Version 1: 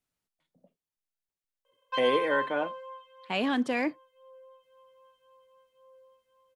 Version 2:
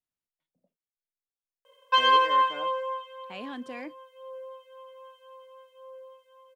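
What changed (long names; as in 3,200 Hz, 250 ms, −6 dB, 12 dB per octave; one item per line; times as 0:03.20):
speech −11.0 dB
background +11.5 dB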